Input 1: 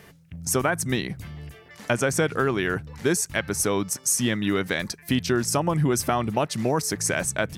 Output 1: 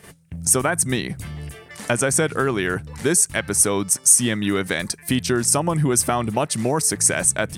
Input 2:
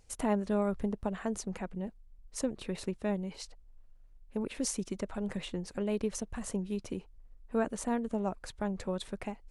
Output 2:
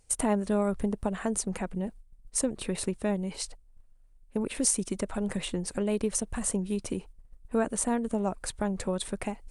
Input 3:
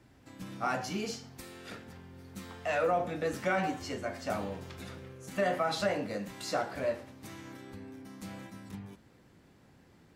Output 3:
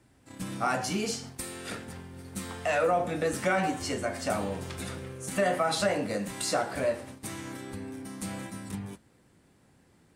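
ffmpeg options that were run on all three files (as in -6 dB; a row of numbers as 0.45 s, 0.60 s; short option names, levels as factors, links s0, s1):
-filter_complex "[0:a]agate=range=0.355:threshold=0.00316:ratio=16:detection=peak,equalizer=f=9000:t=o:w=0.45:g=12,asplit=2[s0][s1];[s1]acompressor=threshold=0.0141:ratio=6,volume=1[s2];[s0][s2]amix=inputs=2:normalize=0,volume=1.12"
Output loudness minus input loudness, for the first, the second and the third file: +5.5 LU, +5.0 LU, +3.0 LU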